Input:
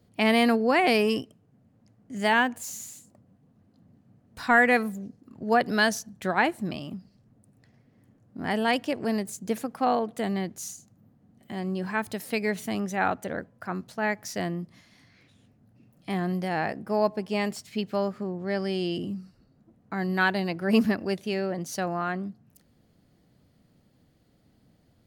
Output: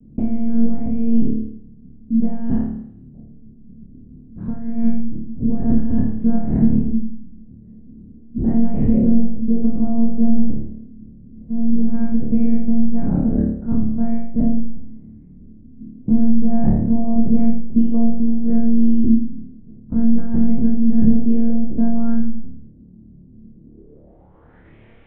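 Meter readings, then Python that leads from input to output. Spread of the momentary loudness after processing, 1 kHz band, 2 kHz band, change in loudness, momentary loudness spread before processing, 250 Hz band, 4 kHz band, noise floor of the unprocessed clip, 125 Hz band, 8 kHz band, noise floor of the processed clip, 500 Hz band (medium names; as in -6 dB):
12 LU, under -10 dB, under -25 dB, +7.5 dB, 15 LU, +13.0 dB, under -30 dB, -64 dBFS, +11.5 dB, under -40 dB, -45 dBFS, -5.0 dB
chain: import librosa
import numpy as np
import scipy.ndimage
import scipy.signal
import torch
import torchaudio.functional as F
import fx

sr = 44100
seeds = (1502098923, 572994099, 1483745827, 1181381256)

y = fx.spec_trails(x, sr, decay_s=0.65)
y = fx.dynamic_eq(y, sr, hz=1900.0, q=1.1, threshold_db=-35.0, ratio=4.0, max_db=5)
y = fx.over_compress(y, sr, threshold_db=-25.0, ratio=-1.0)
y = fx.lpc_monotone(y, sr, seeds[0], pitch_hz=230.0, order=8)
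y = fx.room_flutter(y, sr, wall_m=4.7, rt60_s=0.6)
y = fx.filter_sweep_lowpass(y, sr, from_hz=230.0, to_hz=2300.0, start_s=23.58, end_s=24.76, q=3.5)
y = y * 10.0 ** (7.5 / 20.0)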